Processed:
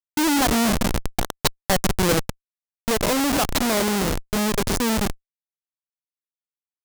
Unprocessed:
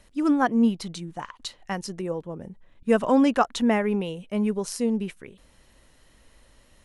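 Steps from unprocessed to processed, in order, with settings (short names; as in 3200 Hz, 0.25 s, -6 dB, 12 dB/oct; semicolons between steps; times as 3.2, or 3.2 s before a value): on a send: split-band echo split 510 Hz, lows 0.115 s, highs 0.239 s, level -14 dB; on the sum: Schmitt trigger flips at -27 dBFS; tone controls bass -4 dB, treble +6 dB; vocal rider 2 s; gain +7 dB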